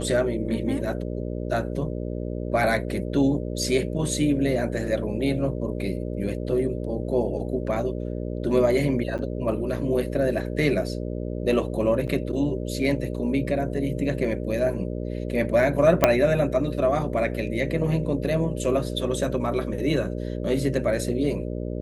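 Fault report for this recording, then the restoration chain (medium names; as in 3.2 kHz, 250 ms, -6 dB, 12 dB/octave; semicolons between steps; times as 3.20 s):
buzz 60 Hz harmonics 10 -30 dBFS
9.18–9.19 s: dropout 8.7 ms
12.07–12.08 s: dropout 8 ms
16.04 s: pop -1 dBFS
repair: de-click; de-hum 60 Hz, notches 10; interpolate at 9.18 s, 8.7 ms; interpolate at 12.07 s, 8 ms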